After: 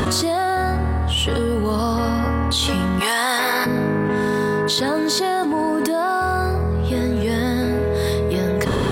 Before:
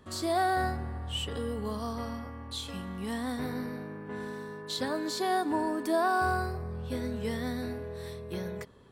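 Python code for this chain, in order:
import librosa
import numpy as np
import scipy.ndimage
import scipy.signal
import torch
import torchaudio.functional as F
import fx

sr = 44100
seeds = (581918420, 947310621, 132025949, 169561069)

y = fx.highpass(x, sr, hz=880.0, slope=12, at=(2.99, 3.65), fade=0.02)
y = fx.env_flatten(y, sr, amount_pct=100)
y = F.gain(torch.from_numpy(y), 5.0).numpy()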